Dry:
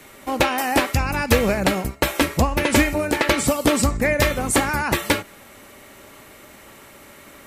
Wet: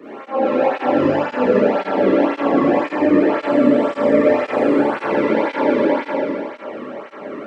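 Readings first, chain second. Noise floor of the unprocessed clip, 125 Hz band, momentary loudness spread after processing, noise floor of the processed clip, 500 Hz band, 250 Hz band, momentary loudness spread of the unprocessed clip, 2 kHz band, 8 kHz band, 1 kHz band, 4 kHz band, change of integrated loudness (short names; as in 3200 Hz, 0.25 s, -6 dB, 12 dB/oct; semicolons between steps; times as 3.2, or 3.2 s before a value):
-46 dBFS, -7.5 dB, 12 LU, -37 dBFS, +8.0 dB, +6.5 dB, 4 LU, -3.5 dB, under -25 dB, +3.0 dB, -10.0 dB, +3.0 dB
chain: spectral trails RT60 2.85 s; HPF 260 Hz 12 dB/oct; tilt shelf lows +5 dB, about 890 Hz; notch 3700 Hz, Q 28; auto swell 0.144 s; limiter -20 dBFS, peak gain reduction 18.5 dB; tape spacing loss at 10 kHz 43 dB; reverse echo 0.115 s -8.5 dB; Schroeder reverb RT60 1.2 s, combs from 28 ms, DRR -9.5 dB; tape flanging out of phase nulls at 1.9 Hz, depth 1.4 ms; gain +7 dB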